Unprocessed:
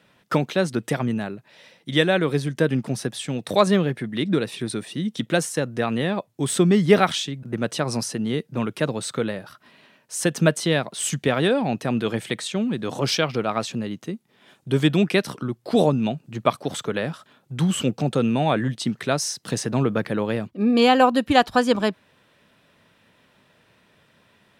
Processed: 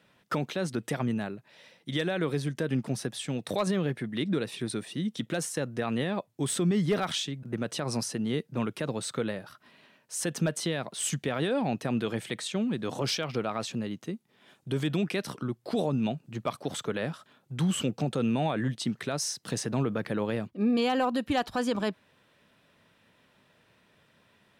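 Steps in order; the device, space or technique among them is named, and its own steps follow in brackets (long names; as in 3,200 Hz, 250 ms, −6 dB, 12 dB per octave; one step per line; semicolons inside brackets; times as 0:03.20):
clipper into limiter (hard clipping −7 dBFS, distortion −26 dB; brickwall limiter −14 dBFS, peak gain reduction 7 dB)
level −5 dB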